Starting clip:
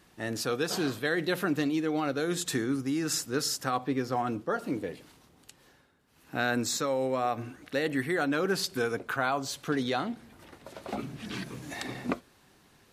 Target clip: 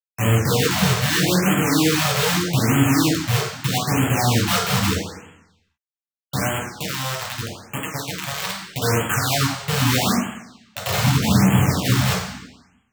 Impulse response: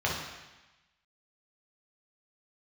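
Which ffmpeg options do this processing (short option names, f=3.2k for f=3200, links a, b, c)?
-filter_complex "[0:a]highpass=f=46:w=0.5412,highpass=f=46:w=1.3066,aemphasis=mode=reproduction:type=bsi,afwtdn=0.0158,highshelf=f=3.3k:g=-9.5,acompressor=threshold=-27dB:ratio=12,alimiter=level_in=2.5dB:limit=-24dB:level=0:latency=1:release=264,volume=-2.5dB,asettb=1/sr,asplit=3[a][b][c];[a]atrim=end=6.474[d];[b]atrim=start=6.47:end=8.82,asetpts=PTS-STARTPTS,afade=t=in:d=0.004:c=qsin,afade=t=out:st=2.346:d=0.004:c=qsin,acrossover=split=100|940[e][f][g];[e]acompressor=threshold=-57dB:ratio=4[h];[f]acompressor=threshold=-42dB:ratio=4[i];[g]acompressor=threshold=-58dB:ratio=4[j];[h][i][j]amix=inputs=3:normalize=0[k];[c]atrim=start=8.816[l];[d][k]acrossfade=d=0.004:c1=hsin:c2=qsin[m];[m][l]acrossfade=d=0.004:c1=qsin:c2=hsin,acrusher=bits=5:mix=0:aa=0.000001,crystalizer=i=4.5:c=0[n];[1:a]atrim=start_sample=2205,asetrate=52920,aresample=44100[o];[n][o]afir=irnorm=-1:irlink=0,afftfilt=real='re*(1-between(b*sr/1024,260*pow(4800/260,0.5+0.5*sin(2*PI*0.8*pts/sr))/1.41,260*pow(4800/260,0.5+0.5*sin(2*PI*0.8*pts/sr))*1.41))':imag='im*(1-between(b*sr/1024,260*pow(4800/260,0.5+0.5*sin(2*PI*0.8*pts/sr))/1.41,260*pow(4800/260,0.5+0.5*sin(2*PI*0.8*pts/sr))*1.41))':win_size=1024:overlap=0.75,volume=5.5dB"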